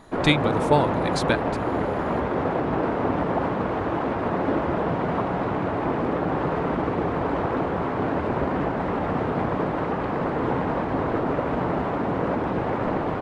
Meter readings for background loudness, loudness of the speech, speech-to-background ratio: -25.5 LUFS, -24.0 LUFS, 1.5 dB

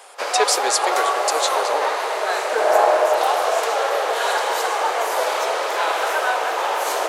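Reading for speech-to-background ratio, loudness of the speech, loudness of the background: -3.0 dB, -23.0 LUFS, -20.0 LUFS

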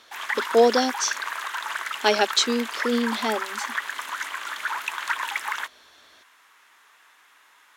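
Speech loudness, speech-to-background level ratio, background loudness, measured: -23.5 LUFS, 6.0 dB, -29.5 LUFS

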